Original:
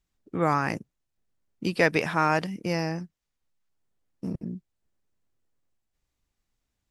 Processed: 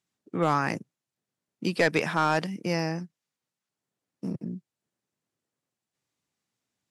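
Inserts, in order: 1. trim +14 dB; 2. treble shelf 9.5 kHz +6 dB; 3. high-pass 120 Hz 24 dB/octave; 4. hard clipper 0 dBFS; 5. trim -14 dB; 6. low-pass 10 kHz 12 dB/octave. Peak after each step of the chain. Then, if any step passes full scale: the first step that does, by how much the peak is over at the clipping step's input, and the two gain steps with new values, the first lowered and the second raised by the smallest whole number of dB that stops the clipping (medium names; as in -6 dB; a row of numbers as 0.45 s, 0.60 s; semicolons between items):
+5.5 dBFS, +5.5 dBFS, +7.5 dBFS, 0.0 dBFS, -14.0 dBFS, -13.5 dBFS; step 1, 7.5 dB; step 1 +6 dB, step 5 -6 dB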